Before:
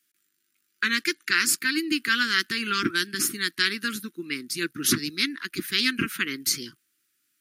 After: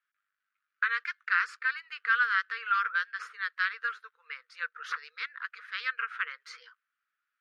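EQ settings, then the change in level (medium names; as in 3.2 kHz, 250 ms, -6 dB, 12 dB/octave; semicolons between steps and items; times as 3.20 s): brick-wall FIR high-pass 450 Hz; tape spacing loss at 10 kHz 35 dB; peaking EQ 1.3 kHz +14 dB 1.3 oct; -7.0 dB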